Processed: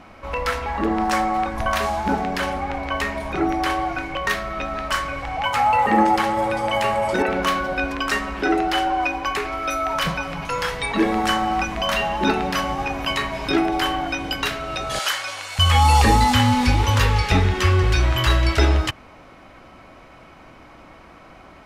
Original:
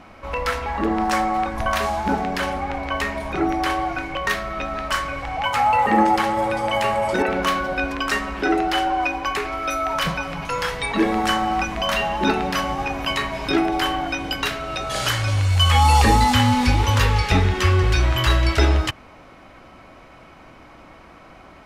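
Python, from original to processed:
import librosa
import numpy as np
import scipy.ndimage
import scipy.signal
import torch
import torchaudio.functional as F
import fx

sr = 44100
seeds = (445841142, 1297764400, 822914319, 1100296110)

y = fx.highpass(x, sr, hz=690.0, slope=12, at=(14.99, 15.59))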